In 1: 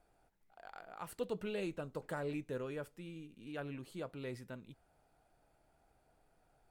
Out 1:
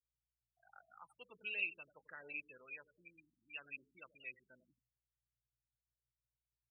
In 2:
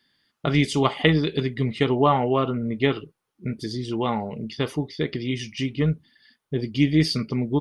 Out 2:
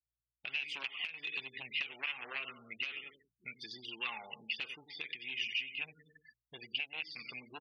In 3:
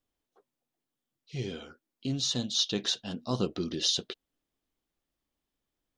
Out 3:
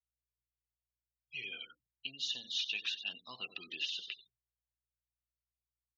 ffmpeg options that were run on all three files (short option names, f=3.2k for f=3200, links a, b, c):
-filter_complex "[0:a]asplit=2[a][b];[b]aecho=0:1:92|184|276|368:0.211|0.093|0.0409|0.018[c];[a][c]amix=inputs=2:normalize=0,aphaser=in_gain=1:out_gain=1:delay=1.5:decay=0.33:speed=1.3:type=triangular,aeval=exprs='val(0)+0.002*(sin(2*PI*60*n/s)+sin(2*PI*2*60*n/s)/2+sin(2*PI*3*60*n/s)/3+sin(2*PI*4*60*n/s)/4+sin(2*PI*5*60*n/s)/5)':c=same,aeval=exprs='0.944*(cos(1*acos(clip(val(0)/0.944,-1,1)))-cos(1*PI/2))+0.0075*(cos(5*acos(clip(val(0)/0.944,-1,1)))-cos(5*PI/2))+0.0596*(cos(6*acos(clip(val(0)/0.944,-1,1)))-cos(6*PI/2))+0.299*(cos(7*acos(clip(val(0)/0.944,-1,1)))-cos(7*PI/2))':c=same,agate=range=-33dB:threshold=-50dB:ratio=3:detection=peak,acompressor=threshold=-26dB:ratio=6,afftfilt=real='re*gte(hypot(re,im),0.00891)':imag='im*gte(hypot(re,im),0.00891)':win_size=1024:overlap=0.75,bandpass=f=2.6k:t=q:w=11:csg=0,alimiter=level_in=15dB:limit=-24dB:level=0:latency=1:release=382,volume=-15dB,volume=14dB"